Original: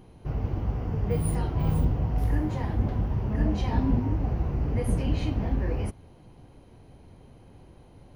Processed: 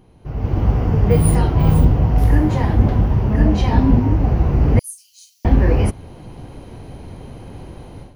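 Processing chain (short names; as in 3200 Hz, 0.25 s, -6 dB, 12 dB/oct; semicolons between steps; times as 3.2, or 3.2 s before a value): 4.79–5.45 inverse Chebyshev high-pass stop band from 1100 Hz, stop band 80 dB; AGC gain up to 16 dB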